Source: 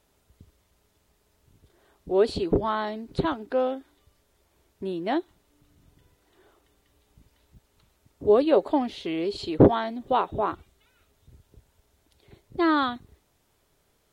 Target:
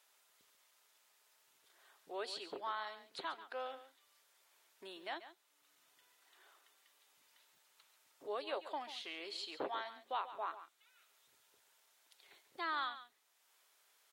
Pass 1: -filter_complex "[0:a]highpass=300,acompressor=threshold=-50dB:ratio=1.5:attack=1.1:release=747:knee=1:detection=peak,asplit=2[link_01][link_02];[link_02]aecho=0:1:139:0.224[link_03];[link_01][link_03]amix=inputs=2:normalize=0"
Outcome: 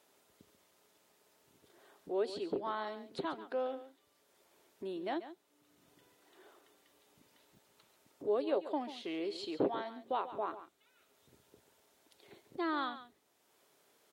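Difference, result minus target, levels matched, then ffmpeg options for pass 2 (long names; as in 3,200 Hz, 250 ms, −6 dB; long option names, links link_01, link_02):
250 Hz band +10.5 dB
-filter_complex "[0:a]highpass=1100,acompressor=threshold=-50dB:ratio=1.5:attack=1.1:release=747:knee=1:detection=peak,asplit=2[link_01][link_02];[link_02]aecho=0:1:139:0.224[link_03];[link_01][link_03]amix=inputs=2:normalize=0"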